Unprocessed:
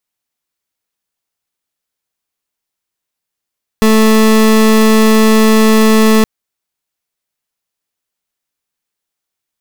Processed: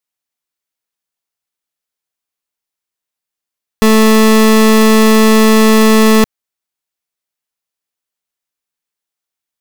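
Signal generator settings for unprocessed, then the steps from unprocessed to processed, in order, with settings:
pulse wave 219 Hz, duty 29% −7.5 dBFS 2.42 s
low-shelf EQ 320 Hz −4 dB
leveller curve on the samples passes 2

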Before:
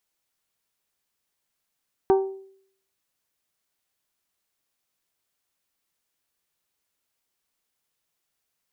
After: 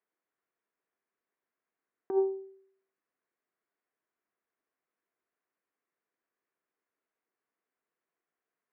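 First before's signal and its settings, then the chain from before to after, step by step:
struck glass bell, lowest mode 386 Hz, modes 5, decay 0.63 s, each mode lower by 7 dB, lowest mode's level −13 dB
tilt shelving filter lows +7 dB, about 860 Hz
compressor whose output falls as the input rises −19 dBFS, ratio −0.5
loudspeaker in its box 480–2,000 Hz, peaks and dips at 570 Hz −8 dB, 850 Hz −9 dB, 1,300 Hz −3 dB

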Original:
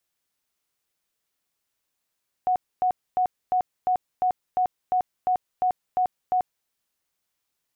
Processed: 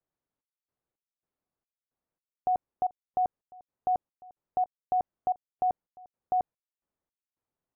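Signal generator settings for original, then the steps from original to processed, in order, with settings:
tone bursts 735 Hz, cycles 65, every 0.35 s, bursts 12, −18.5 dBFS
Bessel low-pass filter 730 Hz, order 2
gate pattern "xxx..xx.." 110 BPM −24 dB

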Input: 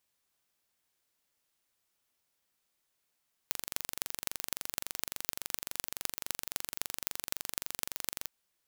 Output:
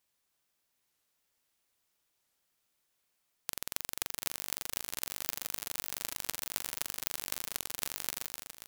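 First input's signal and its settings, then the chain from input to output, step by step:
impulse train 23.6 per second, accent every 6, −3 dBFS 4.78 s
delay with pitch and tempo change per echo 708 ms, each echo +1 semitone, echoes 3, each echo −6 dB
wow of a warped record 45 rpm, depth 250 cents

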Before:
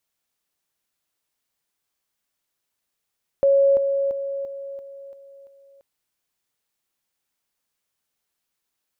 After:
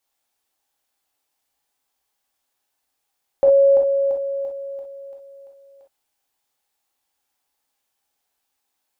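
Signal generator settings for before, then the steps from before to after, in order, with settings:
level staircase 553 Hz −13 dBFS, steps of −6 dB, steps 7, 0.34 s 0.00 s
thirty-one-band graphic EQ 100 Hz −12 dB, 160 Hz −10 dB, 800 Hz +9 dB
reverb whose tail is shaped and stops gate 80 ms flat, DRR 0 dB

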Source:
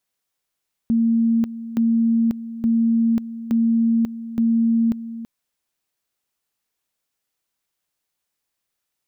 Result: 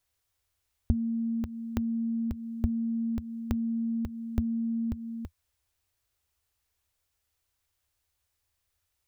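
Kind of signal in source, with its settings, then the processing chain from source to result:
tone at two levels in turn 229 Hz −14.5 dBFS, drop 14 dB, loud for 0.54 s, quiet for 0.33 s, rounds 5
downward compressor, threshold −24 dBFS
low shelf with overshoot 120 Hz +13 dB, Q 3

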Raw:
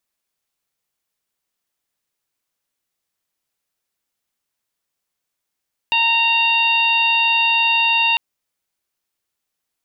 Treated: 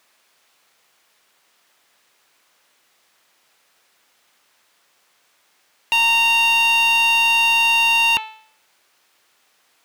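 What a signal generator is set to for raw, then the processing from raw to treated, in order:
steady harmonic partials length 2.25 s, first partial 923 Hz, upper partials −12.5/5/−2.5/−16.5 dB, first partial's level −20 dB
hum removal 437.9 Hz, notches 28
mid-hump overdrive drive 32 dB, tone 2,700 Hz, clips at −9.5 dBFS

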